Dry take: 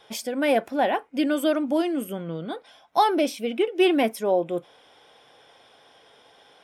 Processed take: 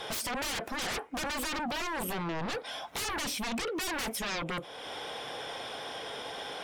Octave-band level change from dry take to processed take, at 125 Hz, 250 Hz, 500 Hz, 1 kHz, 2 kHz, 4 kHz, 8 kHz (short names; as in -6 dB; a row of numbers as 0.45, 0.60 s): -2.0, -13.5, -14.5, -9.5, -2.0, -0.5, +3.5 dB